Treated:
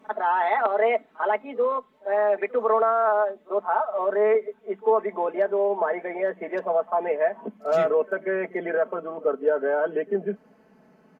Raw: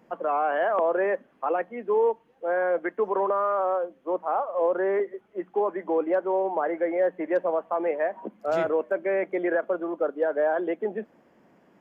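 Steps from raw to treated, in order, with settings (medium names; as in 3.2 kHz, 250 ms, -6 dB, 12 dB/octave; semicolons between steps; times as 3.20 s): gliding tape speed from 121% -> 90%; comb 4.6 ms, depth 78%; pre-echo 47 ms -22 dB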